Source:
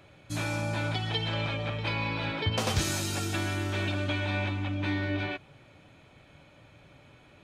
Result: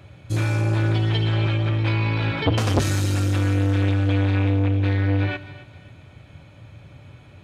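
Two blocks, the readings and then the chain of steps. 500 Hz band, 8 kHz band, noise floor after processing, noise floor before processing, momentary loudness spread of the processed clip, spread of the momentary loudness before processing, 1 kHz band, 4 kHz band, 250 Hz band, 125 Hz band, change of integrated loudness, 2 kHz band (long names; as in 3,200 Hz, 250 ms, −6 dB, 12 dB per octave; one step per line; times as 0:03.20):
+6.5 dB, +0.5 dB, −48 dBFS, −57 dBFS, 3 LU, 4 LU, +4.0 dB, +1.5 dB, +9.0 dB, +13.0 dB, +9.0 dB, +3.0 dB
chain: loose part that buzzes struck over −28 dBFS, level −40 dBFS
parametric band 94 Hz +13 dB 1.5 octaves
on a send: feedback echo with a high-pass in the loop 267 ms, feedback 39%, high-pass 340 Hz, level −15 dB
on the sum: dynamic equaliser 1,600 Hz, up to +4 dB, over −45 dBFS, Q 1.2
saturating transformer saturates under 560 Hz
level +4 dB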